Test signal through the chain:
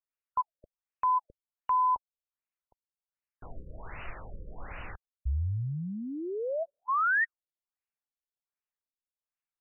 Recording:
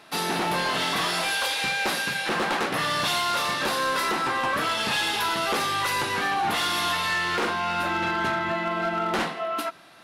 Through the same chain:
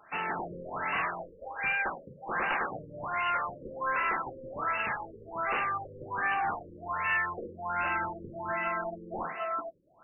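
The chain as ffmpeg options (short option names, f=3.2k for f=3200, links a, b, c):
-af "equalizer=f=250:w=0.44:g=-13,afftfilt=real='re*lt(b*sr/1024,550*pow(3000/550,0.5+0.5*sin(2*PI*1.3*pts/sr)))':imag='im*lt(b*sr/1024,550*pow(3000/550,0.5+0.5*sin(2*PI*1.3*pts/sr)))':win_size=1024:overlap=0.75"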